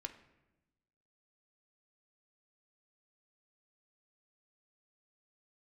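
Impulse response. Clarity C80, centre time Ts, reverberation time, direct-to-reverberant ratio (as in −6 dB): 15.0 dB, 10 ms, 1.0 s, 4.0 dB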